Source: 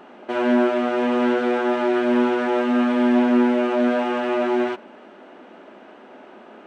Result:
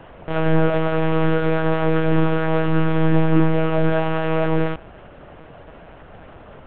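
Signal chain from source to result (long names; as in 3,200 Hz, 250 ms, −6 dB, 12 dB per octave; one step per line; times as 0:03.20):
one-pitch LPC vocoder at 8 kHz 160 Hz
level +2.5 dB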